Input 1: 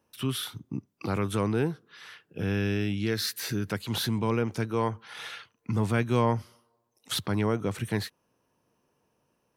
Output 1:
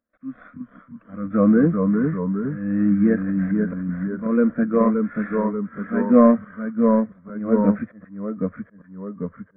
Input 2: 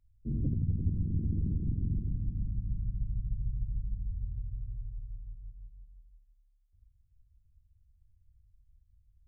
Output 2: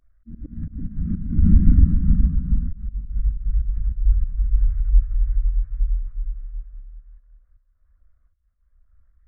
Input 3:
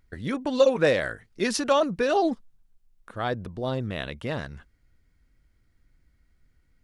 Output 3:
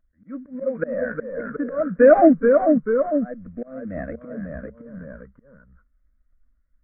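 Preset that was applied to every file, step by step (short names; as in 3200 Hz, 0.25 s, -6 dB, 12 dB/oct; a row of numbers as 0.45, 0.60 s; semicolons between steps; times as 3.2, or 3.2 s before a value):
CVSD 16 kbps; fixed phaser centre 590 Hz, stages 8; auto swell 0.374 s; echoes that change speed 0.312 s, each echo -1 st, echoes 2; spectral expander 1.5:1; normalise peaks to -2 dBFS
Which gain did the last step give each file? +16.5, +24.0, +14.0 dB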